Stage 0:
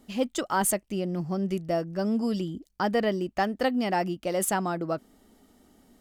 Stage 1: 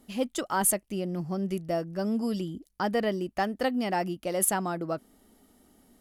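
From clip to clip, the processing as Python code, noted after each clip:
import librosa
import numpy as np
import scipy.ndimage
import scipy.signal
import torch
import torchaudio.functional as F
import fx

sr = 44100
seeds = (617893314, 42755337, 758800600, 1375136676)

y = fx.peak_eq(x, sr, hz=11000.0, db=10.0, octaves=0.31)
y = y * 10.0 ** (-2.0 / 20.0)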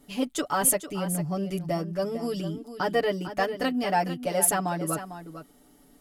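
y = x + 0.99 * np.pad(x, (int(6.9 * sr / 1000.0), 0))[:len(x)]
y = y + 10.0 ** (-11.5 / 20.0) * np.pad(y, (int(450 * sr / 1000.0), 0))[:len(y)]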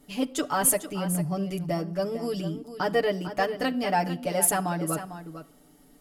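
y = fx.room_shoebox(x, sr, seeds[0], volume_m3=2900.0, walls='furnished', distance_m=0.51)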